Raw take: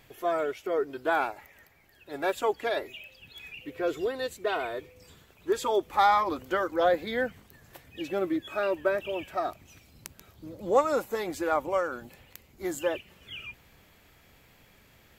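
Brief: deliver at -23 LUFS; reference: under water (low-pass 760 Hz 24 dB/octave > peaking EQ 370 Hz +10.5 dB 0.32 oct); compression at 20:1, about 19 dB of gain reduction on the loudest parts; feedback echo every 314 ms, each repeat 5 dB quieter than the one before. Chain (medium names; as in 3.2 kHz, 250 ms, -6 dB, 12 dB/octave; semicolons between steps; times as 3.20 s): compression 20:1, threshold -36 dBFS; low-pass 760 Hz 24 dB/octave; peaking EQ 370 Hz +10.5 dB 0.32 oct; feedback delay 314 ms, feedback 56%, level -5 dB; trim +15 dB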